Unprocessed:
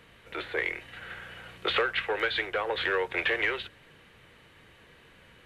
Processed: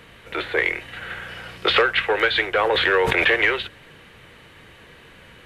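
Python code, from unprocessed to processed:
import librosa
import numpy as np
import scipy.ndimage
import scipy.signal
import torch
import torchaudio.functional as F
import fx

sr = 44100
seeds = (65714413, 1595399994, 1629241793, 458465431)

y = fx.peak_eq(x, sr, hz=5100.0, db=9.5, octaves=0.25, at=(1.28, 1.82))
y = fx.sustainer(y, sr, db_per_s=23.0, at=(2.51, 3.35))
y = y * librosa.db_to_amplitude(9.0)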